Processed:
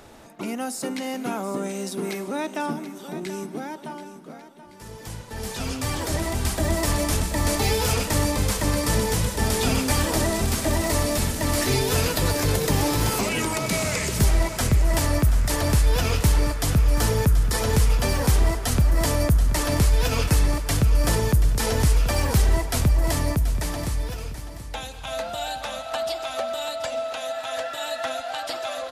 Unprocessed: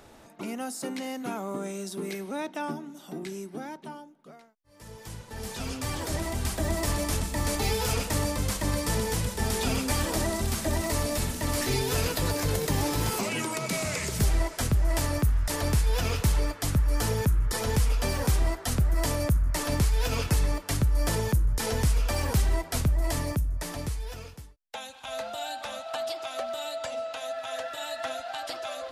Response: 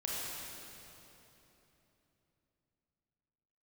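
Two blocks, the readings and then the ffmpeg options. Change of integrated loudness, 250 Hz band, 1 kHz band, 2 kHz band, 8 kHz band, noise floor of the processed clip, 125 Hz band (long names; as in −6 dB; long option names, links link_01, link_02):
+5.5 dB, +5.5 dB, +5.0 dB, +5.5 dB, +5.5 dB, −40 dBFS, +5.5 dB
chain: -filter_complex "[0:a]aecho=1:1:731|1462|2193|2924:0.237|0.0949|0.0379|0.0152,asplit=2[link_01][link_02];[1:a]atrim=start_sample=2205,asetrate=30429,aresample=44100[link_03];[link_02][link_03]afir=irnorm=-1:irlink=0,volume=-24.5dB[link_04];[link_01][link_04]amix=inputs=2:normalize=0,volume=4.5dB"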